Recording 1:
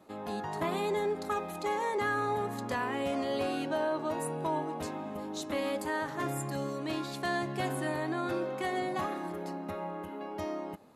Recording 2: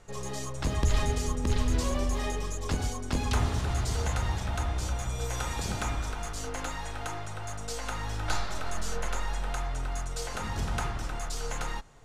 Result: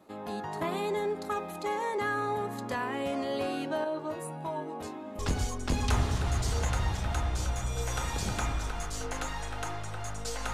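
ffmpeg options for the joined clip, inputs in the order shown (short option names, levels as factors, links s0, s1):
-filter_complex "[0:a]asettb=1/sr,asplit=3[s0][s1][s2];[s0]atrim=end=3.844[s3];[s1]atrim=start=3.84:end=5.19,asetpts=PTS-STARTPTS,afade=t=in:d=0.004:c=qsin,afade=t=out:st=1.346:d=0.004:c=qsin,flanger=delay=19.5:depth=3.4:speed=0.3[s4];[s2]atrim=start=5.186[s5];[s3][s4]acrossfade=d=0.004:c1=hsin:c2=qsin[s6];[s6][s5]acrossfade=d=0.004:c1=qsin:c2=hsin,apad=whole_dur=10.53,atrim=end=10.53,atrim=end=5.192[s7];[1:a]atrim=start=2.618:end=7.96[s8];[s7][s8]acrossfade=d=0.004:c1=hsin:c2=hsin"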